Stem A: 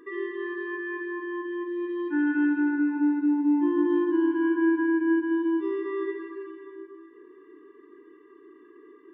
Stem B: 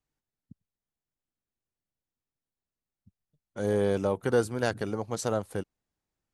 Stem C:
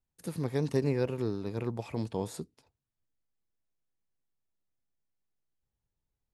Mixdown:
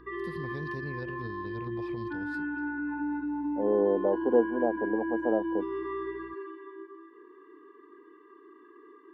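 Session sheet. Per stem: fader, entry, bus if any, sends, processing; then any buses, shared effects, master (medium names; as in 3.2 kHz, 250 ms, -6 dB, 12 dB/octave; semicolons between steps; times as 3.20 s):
-3.0 dB, 0.00 s, bus A, no send, elliptic high-pass 180 Hz; high-order bell 1.1 kHz +8 dB 1.2 oct
+2.0 dB, 0.00 s, no bus, no send, elliptic band-pass 230–840 Hz, stop band 50 dB; hum 60 Hz, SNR 25 dB
-8.5 dB, 0.00 s, bus A, no send, bass shelf 180 Hz +11 dB
bus A: 0.0 dB, resonant high shelf 5.7 kHz -7.5 dB, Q 3; peak limiter -27.5 dBFS, peak gain reduction 11 dB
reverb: none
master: none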